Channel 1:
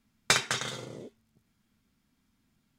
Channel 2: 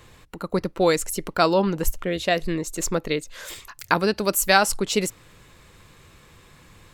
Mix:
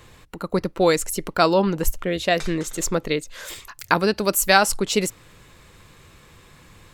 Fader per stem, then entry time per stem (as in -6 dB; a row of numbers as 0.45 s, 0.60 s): -13.0 dB, +1.5 dB; 2.10 s, 0.00 s